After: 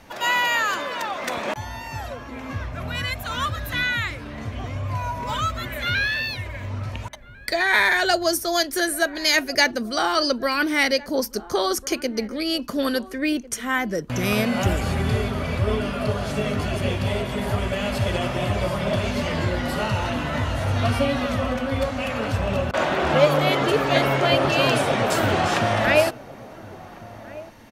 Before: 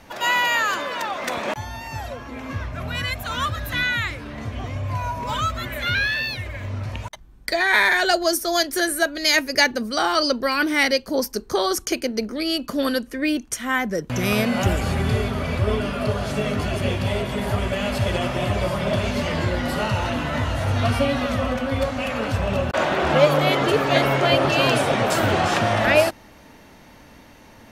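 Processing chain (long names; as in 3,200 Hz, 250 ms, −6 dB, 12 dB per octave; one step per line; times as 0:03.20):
slap from a distant wall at 240 metres, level −18 dB
level −1 dB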